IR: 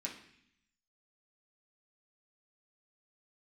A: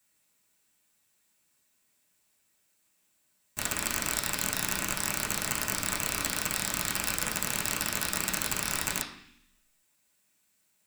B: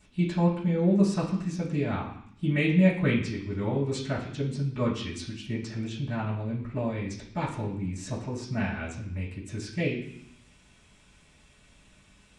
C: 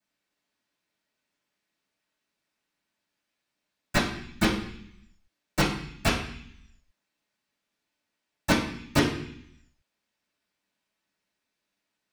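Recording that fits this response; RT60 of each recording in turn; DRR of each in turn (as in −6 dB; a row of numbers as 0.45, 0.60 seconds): A; 0.65, 0.65, 0.65 seconds; −4.0, −12.5, −18.5 decibels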